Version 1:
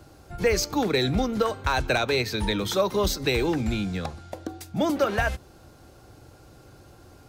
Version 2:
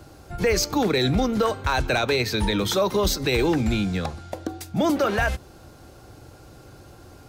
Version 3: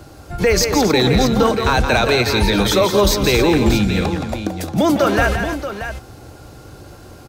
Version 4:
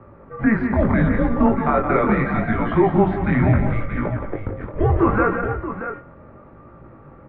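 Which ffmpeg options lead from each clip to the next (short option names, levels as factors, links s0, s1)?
-af "alimiter=limit=0.141:level=0:latency=1:release=14,volume=1.58"
-af "aecho=1:1:171|270|630:0.447|0.251|0.316,volume=2"
-af "highpass=f=240:t=q:w=0.5412,highpass=f=240:t=q:w=1.307,lowpass=f=2100:t=q:w=0.5176,lowpass=f=2100:t=q:w=0.7071,lowpass=f=2100:t=q:w=1.932,afreqshift=-220,flanger=delay=17:depth=6.7:speed=0.74,bandreject=f=94.41:t=h:w=4,bandreject=f=188.82:t=h:w=4,bandreject=f=283.23:t=h:w=4,bandreject=f=377.64:t=h:w=4,bandreject=f=472.05:t=h:w=4,bandreject=f=566.46:t=h:w=4,bandreject=f=660.87:t=h:w=4,bandreject=f=755.28:t=h:w=4,bandreject=f=849.69:t=h:w=4,bandreject=f=944.1:t=h:w=4,bandreject=f=1038.51:t=h:w=4,bandreject=f=1132.92:t=h:w=4,bandreject=f=1227.33:t=h:w=4,bandreject=f=1321.74:t=h:w=4,bandreject=f=1416.15:t=h:w=4,bandreject=f=1510.56:t=h:w=4,bandreject=f=1604.97:t=h:w=4,bandreject=f=1699.38:t=h:w=4,bandreject=f=1793.79:t=h:w=4,bandreject=f=1888.2:t=h:w=4,bandreject=f=1982.61:t=h:w=4,bandreject=f=2077.02:t=h:w=4,bandreject=f=2171.43:t=h:w=4,bandreject=f=2265.84:t=h:w=4,bandreject=f=2360.25:t=h:w=4,bandreject=f=2454.66:t=h:w=4,bandreject=f=2549.07:t=h:w=4,bandreject=f=2643.48:t=h:w=4,bandreject=f=2737.89:t=h:w=4,bandreject=f=2832.3:t=h:w=4,bandreject=f=2926.71:t=h:w=4,bandreject=f=3021.12:t=h:w=4,bandreject=f=3115.53:t=h:w=4,bandreject=f=3209.94:t=h:w=4,volume=1.33"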